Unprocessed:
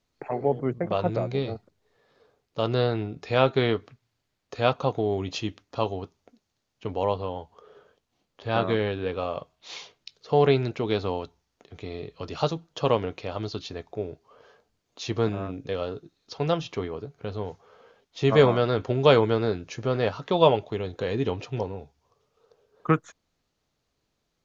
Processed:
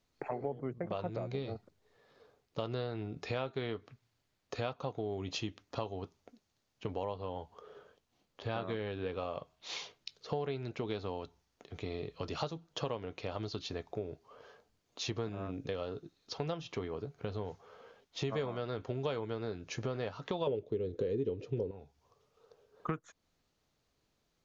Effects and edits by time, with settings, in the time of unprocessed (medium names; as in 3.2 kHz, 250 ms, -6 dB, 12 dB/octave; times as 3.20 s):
20.47–21.71 s: resonant low shelf 600 Hz +9.5 dB, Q 3
whole clip: compression 5:1, threshold -33 dBFS; trim -1.5 dB